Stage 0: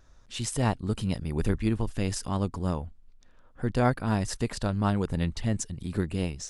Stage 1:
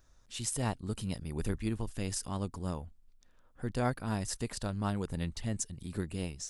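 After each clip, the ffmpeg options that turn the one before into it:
-af "highshelf=f=6600:g=11,volume=0.422"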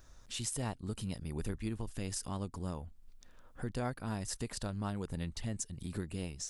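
-af "acompressor=threshold=0.00355:ratio=2,volume=2.11"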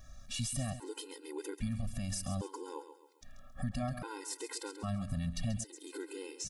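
-af "alimiter=level_in=2.37:limit=0.0631:level=0:latency=1:release=28,volume=0.422,aecho=1:1:135|270|405|540:0.282|0.11|0.0429|0.0167,afftfilt=real='re*gt(sin(2*PI*0.62*pts/sr)*(1-2*mod(floor(b*sr/1024/270),2)),0)':imag='im*gt(sin(2*PI*0.62*pts/sr)*(1-2*mod(floor(b*sr/1024/270),2)),0)':win_size=1024:overlap=0.75,volume=2"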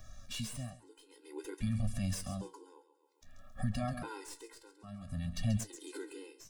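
-filter_complex "[0:a]acrossover=split=370|390|4400[s0][s1][s2][s3];[s3]aeval=exprs='clip(val(0),-1,0.00299)':c=same[s4];[s0][s1][s2][s4]amix=inputs=4:normalize=0,tremolo=f=0.53:d=0.87,flanger=delay=9.3:depth=8.6:regen=53:speed=0.55:shape=sinusoidal,volume=2"

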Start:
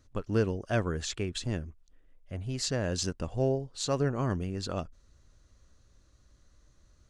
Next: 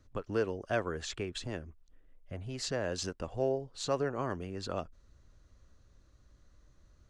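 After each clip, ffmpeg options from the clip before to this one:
-filter_complex "[0:a]highshelf=f=4000:g=-8,acrossover=split=340|970[s0][s1][s2];[s0]acompressor=threshold=0.01:ratio=6[s3];[s3][s1][s2]amix=inputs=3:normalize=0"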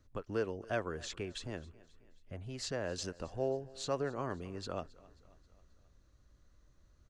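-af "aecho=1:1:268|536|804|1072:0.0794|0.0429|0.0232|0.0125,volume=0.668"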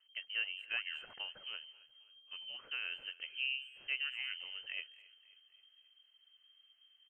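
-filter_complex "[0:a]lowpass=f=2700:t=q:w=0.5098,lowpass=f=2700:t=q:w=0.6013,lowpass=f=2700:t=q:w=0.9,lowpass=f=2700:t=q:w=2.563,afreqshift=-3200,asplit=2[s0][s1];[s1]adelay=220,highpass=300,lowpass=3400,asoftclip=type=hard:threshold=0.0299,volume=0.0708[s2];[s0][s2]amix=inputs=2:normalize=0,volume=0.668"

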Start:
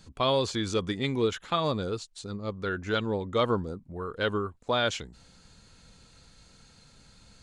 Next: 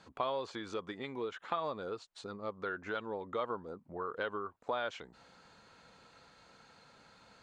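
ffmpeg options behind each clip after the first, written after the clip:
-af "acompressor=threshold=0.0141:ratio=4,bandpass=f=950:t=q:w=0.82:csg=0,volume=1.78"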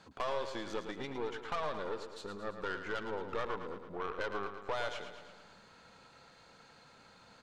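-filter_complex "[0:a]aeval=exprs='(tanh(56.2*val(0)+0.7)-tanh(0.7))/56.2':c=same,asplit=2[s0][s1];[s1]aecho=0:1:111|222|333|444|555|666|777:0.355|0.209|0.124|0.0729|0.043|0.0254|0.015[s2];[s0][s2]amix=inputs=2:normalize=0,volume=1.68"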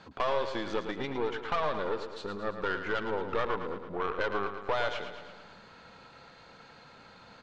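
-af "lowpass=4600,volume=2.11"

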